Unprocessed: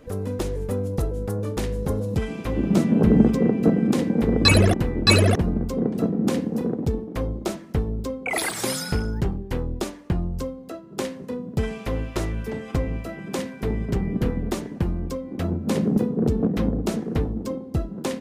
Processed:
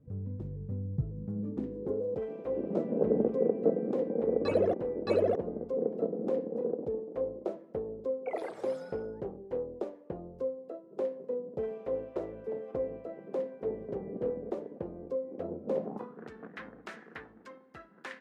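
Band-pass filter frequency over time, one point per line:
band-pass filter, Q 3.4
1.08 s 130 Hz
2.12 s 510 Hz
15.72 s 510 Hz
16.23 s 1.7 kHz

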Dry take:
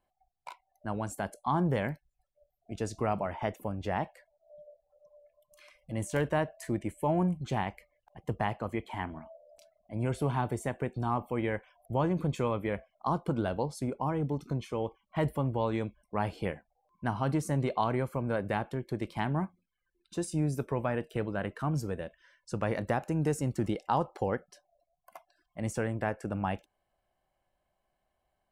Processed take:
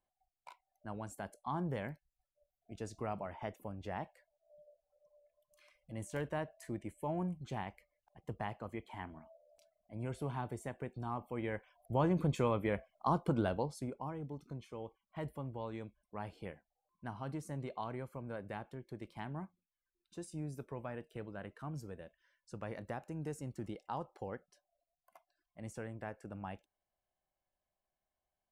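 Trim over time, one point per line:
11.21 s -9.5 dB
12.11 s -2 dB
13.44 s -2 dB
14.19 s -12.5 dB

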